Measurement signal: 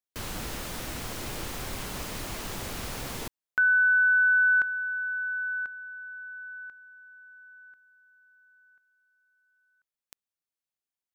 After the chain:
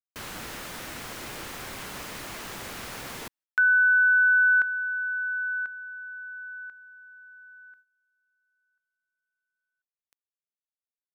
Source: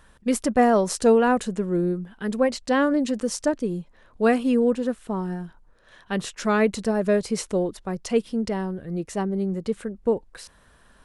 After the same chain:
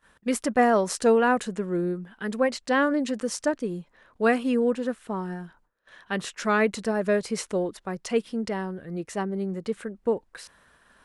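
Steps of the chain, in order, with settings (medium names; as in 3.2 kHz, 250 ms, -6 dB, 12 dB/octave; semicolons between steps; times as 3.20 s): bass shelf 86 Hz -11.5 dB; gate -58 dBFS, range -17 dB; peaking EQ 1.7 kHz +4.5 dB 1.5 oct; trim -2.5 dB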